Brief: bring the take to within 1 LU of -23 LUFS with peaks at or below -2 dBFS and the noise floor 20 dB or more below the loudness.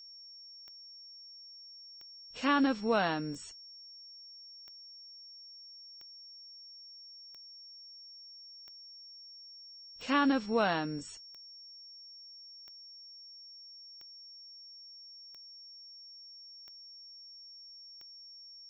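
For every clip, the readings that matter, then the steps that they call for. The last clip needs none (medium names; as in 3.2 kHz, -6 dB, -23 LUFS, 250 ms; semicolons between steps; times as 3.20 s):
clicks found 14; steady tone 5.5 kHz; tone level -49 dBFS; loudness -39.0 LUFS; peak level -15.5 dBFS; loudness target -23.0 LUFS
-> de-click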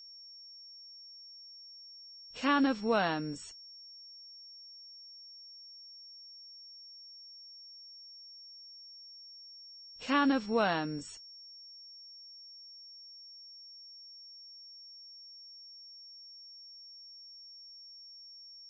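clicks found 0; steady tone 5.5 kHz; tone level -49 dBFS
-> band-stop 5.5 kHz, Q 30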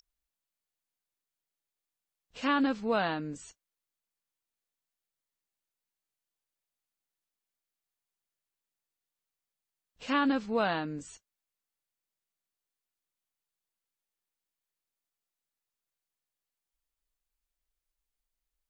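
steady tone not found; loudness -30.5 LUFS; peak level -15.5 dBFS; loudness target -23.0 LUFS
-> trim +7.5 dB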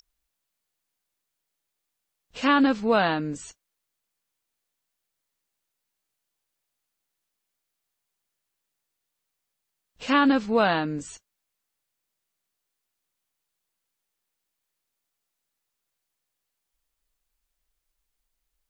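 loudness -23.0 LUFS; peak level -8.0 dBFS; noise floor -83 dBFS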